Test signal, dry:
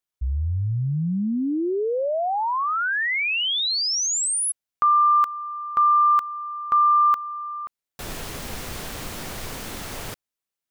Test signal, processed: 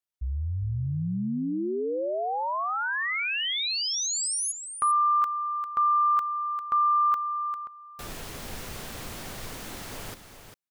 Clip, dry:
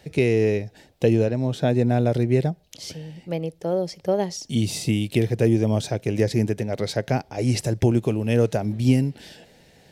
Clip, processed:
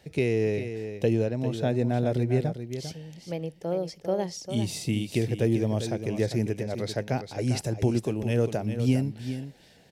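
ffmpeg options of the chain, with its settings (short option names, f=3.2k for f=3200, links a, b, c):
-af "aecho=1:1:399:0.335,volume=-5.5dB"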